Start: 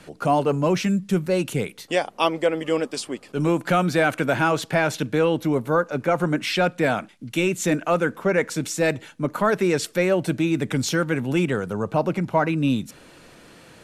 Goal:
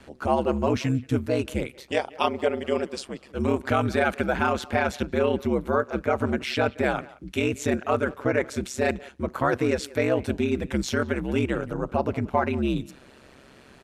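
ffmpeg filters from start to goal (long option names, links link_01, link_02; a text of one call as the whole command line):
ffmpeg -i in.wav -filter_complex "[0:a]highshelf=frequency=5800:gain=-7.5,asplit=2[link_01][link_02];[link_02]adelay=180,highpass=300,lowpass=3400,asoftclip=type=hard:threshold=-15.5dB,volume=-20dB[link_03];[link_01][link_03]amix=inputs=2:normalize=0,aeval=exprs='val(0)*sin(2*PI*67*n/s)':channel_layout=same" out.wav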